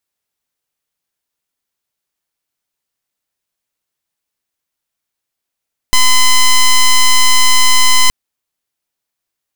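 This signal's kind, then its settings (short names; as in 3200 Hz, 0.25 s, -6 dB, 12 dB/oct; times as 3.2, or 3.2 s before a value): pulse 1020 Hz, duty 8% -7 dBFS 2.17 s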